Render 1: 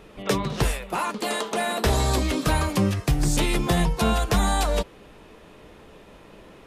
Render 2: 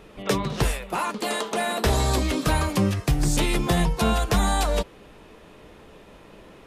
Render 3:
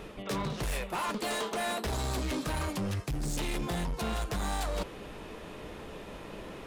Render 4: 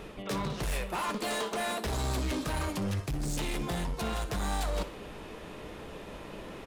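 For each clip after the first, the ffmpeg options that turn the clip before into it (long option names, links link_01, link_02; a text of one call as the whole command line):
ffmpeg -i in.wav -af anull out.wav
ffmpeg -i in.wav -af "areverse,acompressor=threshold=-31dB:ratio=6,areverse,volume=33.5dB,asoftclip=hard,volume=-33.5dB,volume=4dB" out.wav
ffmpeg -i in.wav -af "aecho=1:1:61|122|183|244:0.178|0.0765|0.0329|0.0141" out.wav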